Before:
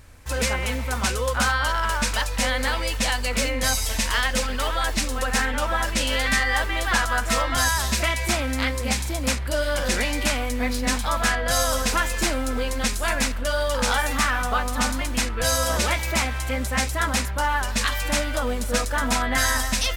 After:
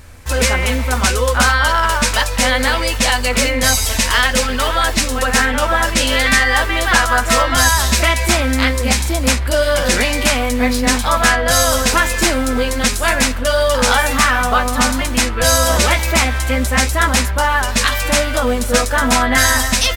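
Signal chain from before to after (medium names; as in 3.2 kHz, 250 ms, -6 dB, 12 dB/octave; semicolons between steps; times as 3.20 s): doubling 12 ms -10.5 dB; trim +8.5 dB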